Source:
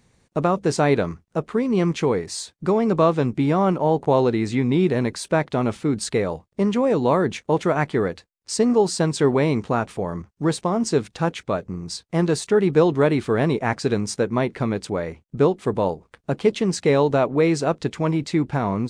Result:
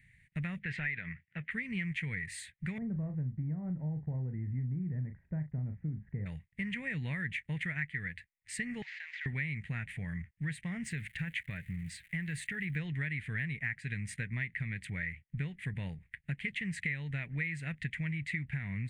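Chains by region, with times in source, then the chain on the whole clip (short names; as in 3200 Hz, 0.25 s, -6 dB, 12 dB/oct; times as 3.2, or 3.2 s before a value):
0.59–1.51 Chebyshev band-pass 100–3500 Hz + overdrive pedal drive 11 dB, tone 2800 Hz, clips at -5.5 dBFS + compressor 2.5:1, threshold -20 dBFS
2.78–6.26 block floating point 5-bit + inverse Chebyshev low-pass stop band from 4800 Hz, stop band 80 dB + doubler 39 ms -9 dB
8.82–9.26 CVSD 32 kbps + inverse Chebyshev high-pass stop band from 210 Hz, stop band 70 dB + compressor 5:1, threshold -39 dBFS
10.83–12.75 compressor 2:1, threshold -22 dBFS + crackle 330/s -41 dBFS
whole clip: EQ curve 150 Hz 0 dB, 360 Hz -27 dB, 1200 Hz -25 dB, 1900 Hz +14 dB, 5500 Hz -22 dB, 9100 Hz -6 dB; compressor 6:1, threshold -30 dBFS; gain -3 dB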